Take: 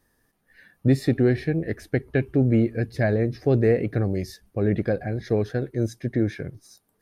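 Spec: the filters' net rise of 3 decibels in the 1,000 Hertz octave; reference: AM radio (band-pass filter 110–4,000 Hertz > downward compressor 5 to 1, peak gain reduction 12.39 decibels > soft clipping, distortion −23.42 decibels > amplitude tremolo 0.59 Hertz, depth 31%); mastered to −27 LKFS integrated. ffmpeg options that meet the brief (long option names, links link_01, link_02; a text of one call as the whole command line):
ffmpeg -i in.wav -af "highpass=110,lowpass=4000,equalizer=frequency=1000:width_type=o:gain=5,acompressor=threshold=-27dB:ratio=5,asoftclip=threshold=-17dB,tremolo=f=0.59:d=0.31,volume=8dB" out.wav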